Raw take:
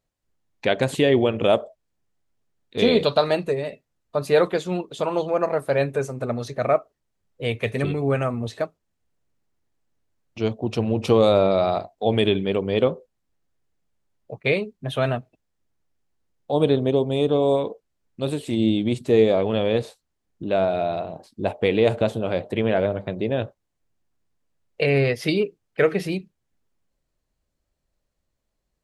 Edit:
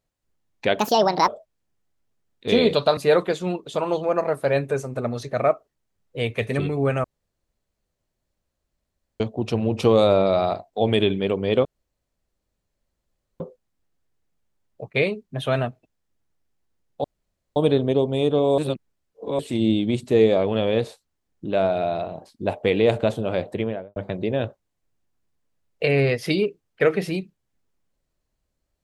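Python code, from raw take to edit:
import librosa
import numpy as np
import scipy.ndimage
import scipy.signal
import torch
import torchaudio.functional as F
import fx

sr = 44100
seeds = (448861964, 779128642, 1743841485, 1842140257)

y = fx.studio_fade_out(x, sr, start_s=22.44, length_s=0.5)
y = fx.edit(y, sr, fx.speed_span(start_s=0.79, length_s=0.79, speed=1.61),
    fx.cut(start_s=3.27, length_s=0.95),
    fx.room_tone_fill(start_s=8.29, length_s=2.16),
    fx.insert_room_tone(at_s=12.9, length_s=1.75),
    fx.insert_room_tone(at_s=16.54, length_s=0.52),
    fx.reverse_span(start_s=17.56, length_s=0.81), tone=tone)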